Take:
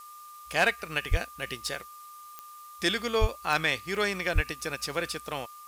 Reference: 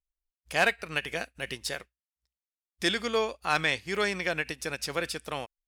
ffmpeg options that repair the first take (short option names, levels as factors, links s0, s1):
-filter_complex "[0:a]adeclick=t=4,bandreject=f=1200:w=30,asplit=3[s0][s1][s2];[s0]afade=t=out:st=1.1:d=0.02[s3];[s1]highpass=f=140:w=0.5412,highpass=f=140:w=1.3066,afade=t=in:st=1.1:d=0.02,afade=t=out:st=1.22:d=0.02[s4];[s2]afade=t=in:st=1.22:d=0.02[s5];[s3][s4][s5]amix=inputs=3:normalize=0,asplit=3[s6][s7][s8];[s6]afade=t=out:st=3.2:d=0.02[s9];[s7]highpass=f=140:w=0.5412,highpass=f=140:w=1.3066,afade=t=in:st=3.2:d=0.02,afade=t=out:st=3.32:d=0.02[s10];[s8]afade=t=in:st=3.32:d=0.02[s11];[s9][s10][s11]amix=inputs=3:normalize=0,asplit=3[s12][s13][s14];[s12]afade=t=out:st=4.34:d=0.02[s15];[s13]highpass=f=140:w=0.5412,highpass=f=140:w=1.3066,afade=t=in:st=4.34:d=0.02,afade=t=out:st=4.46:d=0.02[s16];[s14]afade=t=in:st=4.46:d=0.02[s17];[s15][s16][s17]amix=inputs=3:normalize=0,afftdn=nr=30:nf=-47"